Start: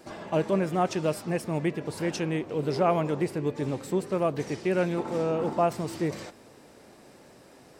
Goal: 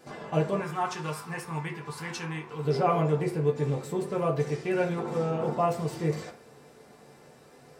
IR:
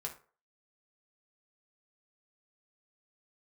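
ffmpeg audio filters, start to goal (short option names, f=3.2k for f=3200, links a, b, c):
-filter_complex "[0:a]asettb=1/sr,asplit=3[a][b][c];[a]atrim=end=0.604[d];[b]atrim=start=0.6:end=2.65,asetpts=PTS-STARTPTS,afade=t=in:d=0.004:c=qsin,afade=t=out:st=2.046:d=0.004:c=qsin,lowshelf=f=780:t=q:w=3:g=-7[e];[c]atrim=start=2.646[f];[d][e]acrossfade=d=0.004:c1=hsin:c2=qsin[g];[g][f]acrossfade=d=0.004:c1=qsin:c2=hsin[h];[1:a]atrim=start_sample=2205[i];[h][i]afir=irnorm=-1:irlink=0"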